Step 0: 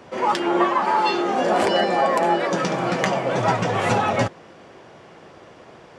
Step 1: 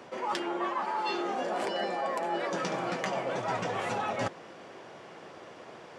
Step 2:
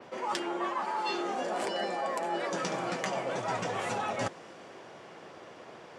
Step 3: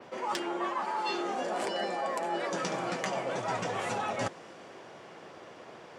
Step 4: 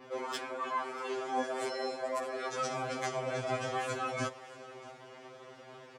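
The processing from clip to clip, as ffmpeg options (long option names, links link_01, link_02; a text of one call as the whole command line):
ffmpeg -i in.wav -af "highpass=frequency=230:poles=1,areverse,acompressor=threshold=-27dB:ratio=10,areverse,volume=-1.5dB" out.wav
ffmpeg -i in.wav -af "adynamicequalizer=threshold=0.00126:dfrequency=8500:dqfactor=0.85:tfrequency=8500:tqfactor=0.85:attack=5:release=100:ratio=0.375:range=3:mode=boostabove:tftype=bell,volume=-1dB" out.wav
ffmpeg -i in.wav -af "volume=20dB,asoftclip=hard,volume=-20dB" out.wav
ffmpeg -i in.wav -af "aecho=1:1:634:0.112,afftfilt=real='re*2.45*eq(mod(b,6),0)':imag='im*2.45*eq(mod(b,6),0)':win_size=2048:overlap=0.75" out.wav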